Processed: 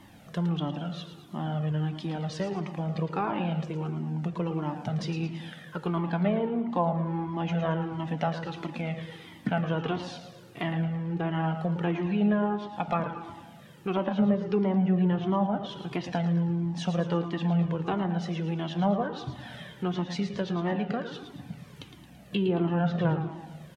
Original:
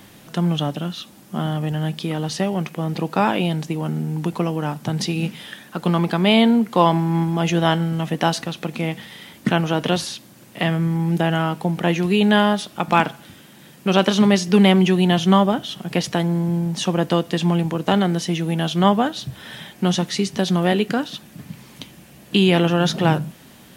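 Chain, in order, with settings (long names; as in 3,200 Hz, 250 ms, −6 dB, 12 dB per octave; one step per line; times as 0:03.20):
treble cut that deepens with the level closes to 1,000 Hz, closed at −10.5 dBFS
high-shelf EQ 2,900 Hz −9 dB
in parallel at −1 dB: downward compressor, threshold −27 dBFS, peak gain reduction 16 dB
on the sum: repeating echo 111 ms, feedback 47%, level −9.5 dB
on a send at −12 dB: convolution reverb RT60 1.5 s, pre-delay 6 ms
on the sum: flanger whose copies keep moving one way falling 1.5 Hz
level −6.5 dB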